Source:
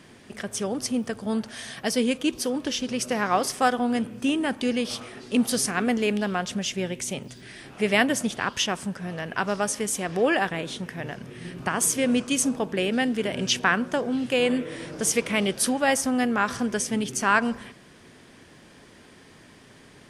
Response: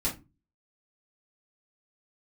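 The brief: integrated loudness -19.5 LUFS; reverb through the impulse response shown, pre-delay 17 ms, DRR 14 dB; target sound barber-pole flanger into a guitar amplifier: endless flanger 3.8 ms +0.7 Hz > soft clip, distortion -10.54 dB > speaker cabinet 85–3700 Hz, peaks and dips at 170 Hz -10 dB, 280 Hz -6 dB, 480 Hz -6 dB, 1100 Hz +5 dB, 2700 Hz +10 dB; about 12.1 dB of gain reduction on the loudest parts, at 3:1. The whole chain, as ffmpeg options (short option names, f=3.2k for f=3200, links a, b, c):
-filter_complex "[0:a]acompressor=threshold=-33dB:ratio=3,asplit=2[a][b];[1:a]atrim=start_sample=2205,adelay=17[c];[b][c]afir=irnorm=-1:irlink=0,volume=-20dB[d];[a][d]amix=inputs=2:normalize=0,asplit=2[e][f];[f]adelay=3.8,afreqshift=0.7[g];[e][g]amix=inputs=2:normalize=1,asoftclip=threshold=-35dB,highpass=85,equalizer=f=170:t=q:w=4:g=-10,equalizer=f=280:t=q:w=4:g=-6,equalizer=f=480:t=q:w=4:g=-6,equalizer=f=1.1k:t=q:w=4:g=5,equalizer=f=2.7k:t=q:w=4:g=10,lowpass=f=3.7k:w=0.5412,lowpass=f=3.7k:w=1.3066,volume=22dB"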